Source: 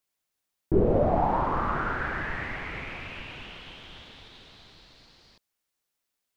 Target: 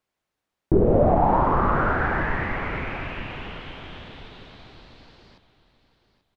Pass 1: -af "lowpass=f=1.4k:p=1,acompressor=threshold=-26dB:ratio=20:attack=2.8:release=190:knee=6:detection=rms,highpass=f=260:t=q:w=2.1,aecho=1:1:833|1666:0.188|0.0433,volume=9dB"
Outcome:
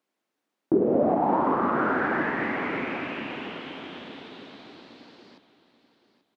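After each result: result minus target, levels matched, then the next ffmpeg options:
compressor: peak gain reduction +6.5 dB; 250 Hz band +3.0 dB
-af "lowpass=f=1.4k:p=1,acompressor=threshold=-19dB:ratio=20:attack=2.8:release=190:knee=6:detection=rms,highpass=f=260:t=q:w=2.1,aecho=1:1:833|1666:0.188|0.0433,volume=9dB"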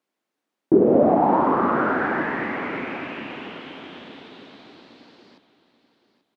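250 Hz band +3.0 dB
-af "lowpass=f=1.4k:p=1,acompressor=threshold=-19dB:ratio=20:attack=2.8:release=190:knee=6:detection=rms,aecho=1:1:833|1666:0.188|0.0433,volume=9dB"

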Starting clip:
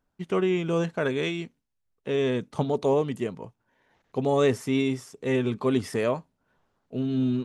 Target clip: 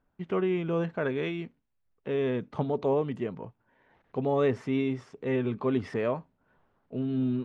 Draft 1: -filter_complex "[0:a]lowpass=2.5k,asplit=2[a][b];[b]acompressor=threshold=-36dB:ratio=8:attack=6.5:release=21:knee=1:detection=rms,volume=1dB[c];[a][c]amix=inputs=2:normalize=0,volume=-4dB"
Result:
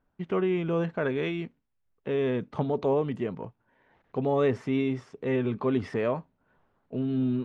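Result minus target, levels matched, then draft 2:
compressor: peak gain reduction -8.5 dB
-filter_complex "[0:a]lowpass=2.5k,asplit=2[a][b];[b]acompressor=threshold=-45.5dB:ratio=8:attack=6.5:release=21:knee=1:detection=rms,volume=1dB[c];[a][c]amix=inputs=2:normalize=0,volume=-4dB"

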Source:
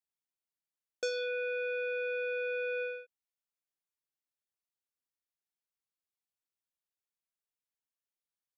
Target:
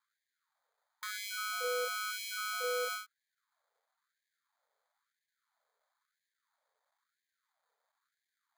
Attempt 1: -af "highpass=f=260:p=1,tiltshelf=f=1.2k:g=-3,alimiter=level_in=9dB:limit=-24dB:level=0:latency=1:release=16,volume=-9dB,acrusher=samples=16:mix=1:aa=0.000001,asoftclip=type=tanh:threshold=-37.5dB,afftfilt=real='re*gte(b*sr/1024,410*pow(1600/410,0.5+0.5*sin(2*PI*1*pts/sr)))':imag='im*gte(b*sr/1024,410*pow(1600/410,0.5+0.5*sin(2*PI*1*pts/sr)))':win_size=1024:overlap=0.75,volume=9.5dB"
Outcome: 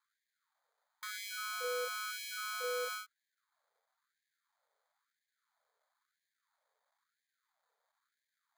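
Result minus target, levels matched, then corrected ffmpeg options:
soft clip: distortion +13 dB
-af "highpass=f=260:p=1,tiltshelf=f=1.2k:g=-3,alimiter=level_in=9dB:limit=-24dB:level=0:latency=1:release=16,volume=-9dB,acrusher=samples=16:mix=1:aa=0.000001,asoftclip=type=tanh:threshold=-29.5dB,afftfilt=real='re*gte(b*sr/1024,410*pow(1600/410,0.5+0.5*sin(2*PI*1*pts/sr)))':imag='im*gte(b*sr/1024,410*pow(1600/410,0.5+0.5*sin(2*PI*1*pts/sr)))':win_size=1024:overlap=0.75,volume=9.5dB"

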